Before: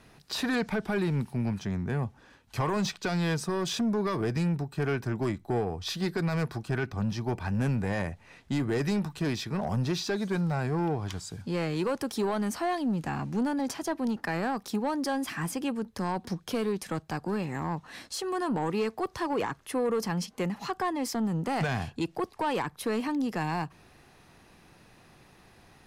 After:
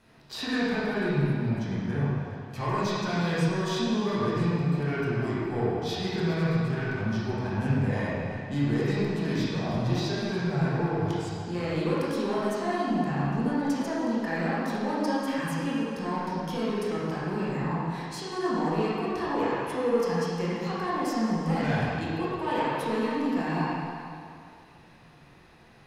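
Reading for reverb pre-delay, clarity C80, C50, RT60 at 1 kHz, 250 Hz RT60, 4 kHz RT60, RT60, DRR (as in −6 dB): 17 ms, −2.0 dB, −4.5 dB, 2.4 s, 2.2 s, 2.0 s, 2.4 s, −8.5 dB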